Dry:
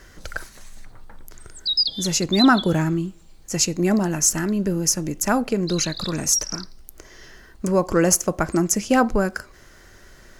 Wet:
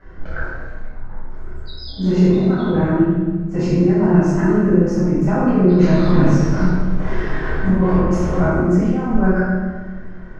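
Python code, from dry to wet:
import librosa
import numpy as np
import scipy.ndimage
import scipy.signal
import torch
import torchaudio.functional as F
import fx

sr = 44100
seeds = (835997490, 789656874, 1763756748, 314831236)

y = fx.zero_step(x, sr, step_db=-24.0, at=(5.79, 8.38))
y = scipy.signal.sosfilt(scipy.signal.butter(2, 1300.0, 'lowpass', fs=sr, output='sos'), y)
y = fx.over_compress(y, sr, threshold_db=-21.0, ratio=-0.5)
y = fx.doubler(y, sr, ms=28.0, db=-3.5)
y = fx.echo_feedback(y, sr, ms=129, feedback_pct=52, wet_db=-13.5)
y = fx.room_shoebox(y, sr, seeds[0], volume_m3=760.0, walls='mixed', distance_m=7.5)
y = y * librosa.db_to_amplitude(-8.5)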